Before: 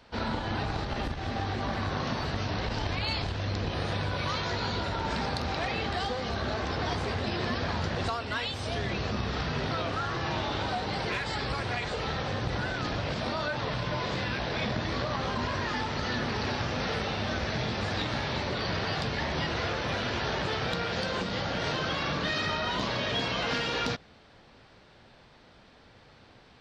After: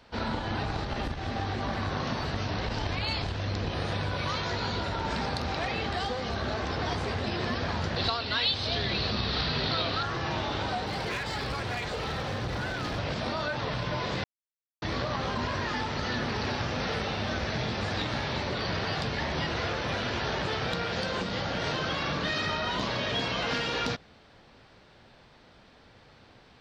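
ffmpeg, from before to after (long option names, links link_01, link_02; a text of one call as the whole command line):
ffmpeg -i in.wav -filter_complex "[0:a]asettb=1/sr,asplit=3[link_01][link_02][link_03];[link_01]atrim=end=7.964[link_04];[link_02]atrim=start=7.96:end=10.03,asetpts=PTS-STARTPTS,afade=type=in:duration=0.004:curve=qsin,afade=type=out:start_time=2.066:duration=0.004:curve=qsin,lowpass=frequency=4200:width_type=q:width=4.1[link_05];[link_03]atrim=start=10.026[link_06];[link_04][link_05]acrossfade=duration=0.004:curve1=hsin:curve2=qsin[link_07];[link_07][link_06]acrossfade=duration=0.004:curve1=qsin:curve2=hsin,asettb=1/sr,asplit=3[link_08][link_09][link_10];[link_08]atrim=end=10.864[link_11];[link_09]atrim=start=10.86:end=12.99,asetpts=PTS-STARTPTS,afade=type=in:duration=0.004:curve=qsin,afade=type=out:start_time=2.126:duration=0.004:curve=qsin,volume=27.5dB,asoftclip=hard,volume=-27.5dB[link_12];[link_10]atrim=start=12.986[link_13];[link_11][link_12]acrossfade=duration=0.004:curve1=hsin:curve2=qsin[link_14];[link_14][link_13]acrossfade=duration=0.004:curve1=qsin:curve2=hsin,asplit=3[link_15][link_16][link_17];[link_15]atrim=end=14.24,asetpts=PTS-STARTPTS,afade=type=out:start_time=14.236:duration=0.004:curve=hsin[link_18];[link_16]atrim=start=14.24:end=14.82,asetpts=PTS-STARTPTS,volume=0[link_19];[link_17]atrim=start=14.82,asetpts=PTS-STARTPTS,afade=type=in:duration=0.004:curve=hsin[link_20];[link_18][link_19][link_20]concat=n=3:v=0:a=1" out.wav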